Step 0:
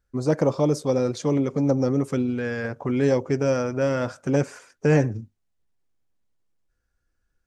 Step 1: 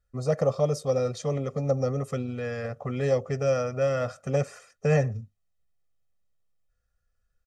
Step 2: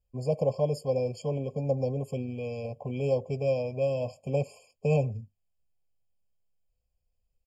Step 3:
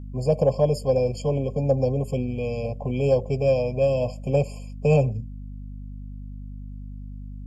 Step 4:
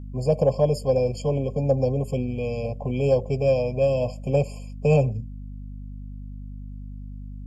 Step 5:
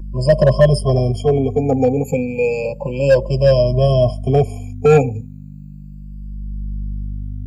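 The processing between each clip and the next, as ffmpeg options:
-af "aecho=1:1:1.6:0.86,volume=-5.5dB"
-af "afftfilt=real='re*eq(mod(floor(b*sr/1024/1100),2),0)':imag='im*eq(mod(floor(b*sr/1024/1100),2),0)':win_size=1024:overlap=0.75,volume=-2.5dB"
-af "acontrast=73,aeval=exprs='val(0)+0.0178*(sin(2*PI*50*n/s)+sin(2*PI*2*50*n/s)/2+sin(2*PI*3*50*n/s)/3+sin(2*PI*4*50*n/s)/4+sin(2*PI*5*50*n/s)/5)':c=same"
-af anull
-filter_complex "[0:a]afftfilt=real='re*pow(10,23/40*sin(2*PI*(1.3*log(max(b,1)*sr/1024/100)/log(2)-(0.32)*(pts-256)/sr)))':imag='im*pow(10,23/40*sin(2*PI*(1.3*log(max(b,1)*sr/1024/100)/log(2)-(0.32)*(pts-256)/sr)))':win_size=1024:overlap=0.75,acrossover=split=270|790|4100[a][b][c][d];[b]volume=14.5dB,asoftclip=hard,volume=-14.5dB[e];[a][e][c][d]amix=inputs=4:normalize=0,volume=4dB"

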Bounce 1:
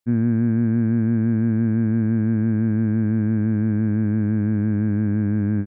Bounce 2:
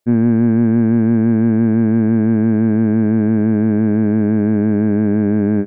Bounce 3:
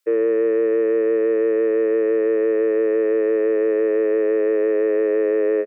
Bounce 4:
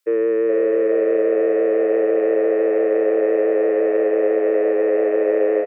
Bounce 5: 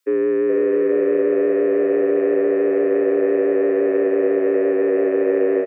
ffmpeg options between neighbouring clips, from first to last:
-af "equalizer=f=100:t=o:w=0.33:g=-8,equalizer=f=400:t=o:w=0.33:g=11,equalizer=f=630:t=o:w=0.33:g=11,acontrast=78"
-af "firequalizer=gain_entry='entry(290,0);entry(570,-20);entry(980,4)':delay=0.05:min_phase=1,alimiter=limit=-10dB:level=0:latency=1:release=463,afreqshift=220,volume=-1.5dB"
-filter_complex "[0:a]asplit=6[a][b][c][d][e][f];[b]adelay=420,afreqshift=83,volume=-6.5dB[g];[c]adelay=840,afreqshift=166,volume=-14dB[h];[d]adelay=1260,afreqshift=249,volume=-21.6dB[i];[e]adelay=1680,afreqshift=332,volume=-29.1dB[j];[f]adelay=2100,afreqshift=415,volume=-36.6dB[k];[a][g][h][i][j][k]amix=inputs=6:normalize=0"
-af "afreqshift=-43"

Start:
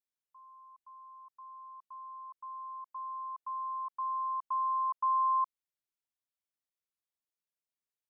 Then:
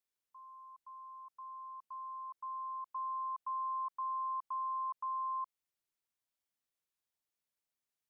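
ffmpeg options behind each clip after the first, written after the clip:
-af "alimiter=level_in=11.5dB:limit=-24dB:level=0:latency=1,volume=-11.5dB,volume=1.5dB"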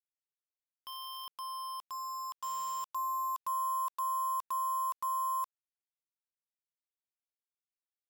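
-af "acrusher=bits=7:mix=0:aa=0.000001,volume=4.5dB"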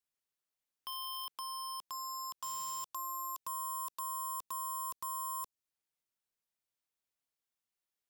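-filter_complex "[0:a]acrossover=split=500|3000[a][b][c];[b]acompressor=threshold=-48dB:ratio=6[d];[a][d][c]amix=inputs=3:normalize=0,volume=4dB"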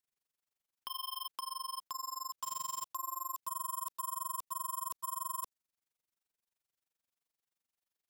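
-af "tremolo=f=23:d=0.974,volume=4dB"

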